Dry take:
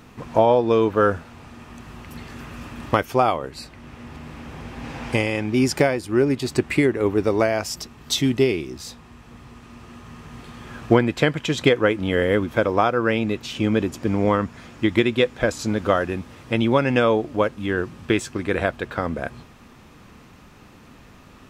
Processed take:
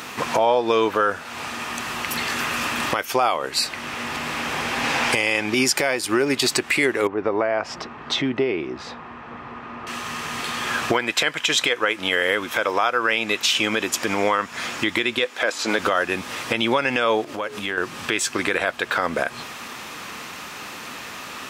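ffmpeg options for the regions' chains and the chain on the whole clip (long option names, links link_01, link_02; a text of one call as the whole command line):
ffmpeg -i in.wav -filter_complex "[0:a]asettb=1/sr,asplit=3[link_01][link_02][link_03];[link_01]atrim=end=7.074[link_04];[link_02]atrim=start=7.07:end=9.87,asetpts=PTS-STARTPTS,afade=type=in:duration=0.004:curve=qsin,afade=type=out:start_time=2.796:duration=0.004:curve=qsin,lowpass=1400,acompressor=threshold=-37dB:ratio=1.5:attack=3.2:release=140:knee=1:detection=peak[link_05];[link_03]atrim=start=9.866[link_06];[link_04][link_05]acrossfade=duration=0.004:curve1=hsin:curve2=qsin[link_07];[link_07][link_06]acrossfade=duration=0.004:curve1=qsin:curve2=hsin,asettb=1/sr,asplit=3[link_08][link_09][link_10];[link_08]atrim=end=10.924[link_11];[link_09]atrim=start=10.92:end=14.52,asetpts=PTS-STARTPTS,afade=type=in:duration=0.004:curve=qsin,afade=type=out:start_time=3.596:duration=0.004:curve=qsin,lowshelf=frequency=470:gain=-7,bandreject=frequency=4500:width=23[link_12];[link_10]atrim=start=14.516[link_13];[link_11][link_12]acrossfade=duration=0.004:curve1=hsin:curve2=qsin[link_14];[link_14][link_13]acrossfade=duration=0.004:curve1=qsin:curve2=hsin,asettb=1/sr,asplit=3[link_15][link_16][link_17];[link_15]atrim=end=15.254[link_18];[link_16]atrim=start=15.25:end=15.79,asetpts=PTS-STARTPTS,afade=type=in:duration=0.004:curve=qsin,afade=type=out:start_time=0.536:duration=0.004:curve=qsin,highpass=290,acrossover=split=3800[link_19][link_20];[link_20]acompressor=threshold=-46dB:ratio=4:attack=1:release=60[link_21];[link_19][link_21]amix=inputs=2:normalize=0[link_22];[link_17]atrim=start=15.786[link_23];[link_18][link_22]acrossfade=duration=0.004:curve1=hsin:curve2=qsin[link_24];[link_24][link_23]acrossfade=duration=0.004:curve1=qsin:curve2=hsin,asettb=1/sr,asplit=3[link_25][link_26][link_27];[link_25]atrim=end=17.244[link_28];[link_26]atrim=start=17.24:end=17.78,asetpts=PTS-STARTPTS,afade=type=in:duration=0.004:curve=qsin,afade=type=out:start_time=0.536:duration=0.004:curve=qsin,bandreject=frequency=60:width_type=h:width=6,bandreject=frequency=120:width_type=h:width=6,bandreject=frequency=180:width_type=h:width=6,bandreject=frequency=240:width_type=h:width=6,bandreject=frequency=300:width_type=h:width=6,bandreject=frequency=360:width_type=h:width=6,bandreject=frequency=420:width_type=h:width=6,acompressor=threshold=-33dB:ratio=16:attack=3.2:release=140:knee=1:detection=peak[link_29];[link_27]atrim=start=17.776[link_30];[link_28][link_29]acrossfade=duration=0.004:curve1=hsin:curve2=qsin[link_31];[link_31][link_30]acrossfade=duration=0.004:curve1=qsin:curve2=hsin,highpass=frequency=1400:poles=1,acompressor=threshold=-38dB:ratio=3,alimiter=level_in=27dB:limit=-1dB:release=50:level=0:latency=1,volume=-7dB" out.wav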